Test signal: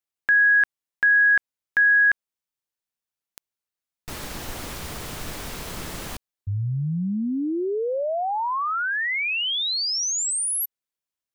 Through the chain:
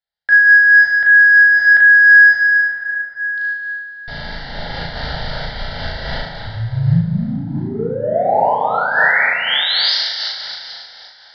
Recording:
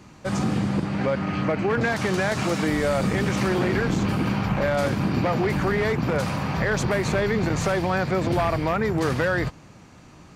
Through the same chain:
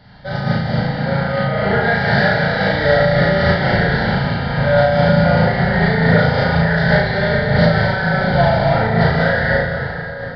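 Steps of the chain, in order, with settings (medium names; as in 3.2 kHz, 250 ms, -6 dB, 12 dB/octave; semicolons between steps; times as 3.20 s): treble shelf 3.6 kHz +6 dB; hum notches 50/100/150/200 Hz; in parallel at -8.5 dB: saturation -26 dBFS; on the sum: distance through air 87 m; static phaser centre 1.7 kHz, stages 8; flutter echo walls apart 6.2 m, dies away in 0.65 s; plate-style reverb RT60 3.9 s, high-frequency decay 0.7×, DRR -4.5 dB; resampled via 11.025 kHz; loudness maximiser +5 dB; random flutter of the level, depth 55%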